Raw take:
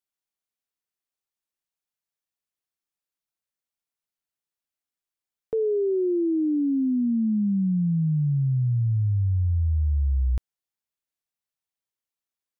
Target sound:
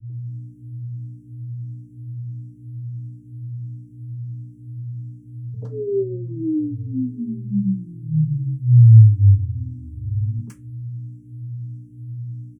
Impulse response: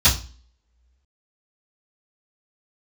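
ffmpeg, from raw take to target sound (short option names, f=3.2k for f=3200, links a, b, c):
-filter_complex "[0:a]bass=f=250:g=-3,treble=f=4k:g=8,acrossover=split=330[a][b];[a]alimiter=level_in=6dB:limit=-24dB:level=0:latency=1:release=177,volume=-6dB[c];[c][b]amix=inputs=2:normalize=0,acompressor=threshold=-27dB:ratio=6,asubboost=boost=6:cutoff=67,aeval=exprs='val(0)+0.00631*(sin(2*PI*60*n/s)+sin(2*PI*2*60*n/s)/2+sin(2*PI*3*60*n/s)/3+sin(2*PI*4*60*n/s)/4+sin(2*PI*5*60*n/s)/5)':c=same,tremolo=f=170:d=0.182,acrossover=split=180|640[d][e][f];[e]adelay=90[g];[f]adelay=120[h];[d][g][h]amix=inputs=3:normalize=0[i];[1:a]atrim=start_sample=2205,asetrate=74970,aresample=44100[j];[i][j]afir=irnorm=-1:irlink=0,asplit=2[k][l];[l]afreqshift=1.5[m];[k][m]amix=inputs=2:normalize=1,volume=-8.5dB"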